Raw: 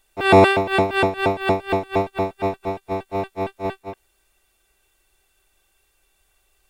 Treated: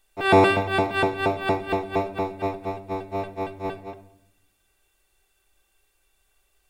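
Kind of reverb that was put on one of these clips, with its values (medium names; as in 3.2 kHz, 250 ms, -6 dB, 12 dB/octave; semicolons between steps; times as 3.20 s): simulated room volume 170 m³, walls mixed, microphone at 0.33 m; trim -4 dB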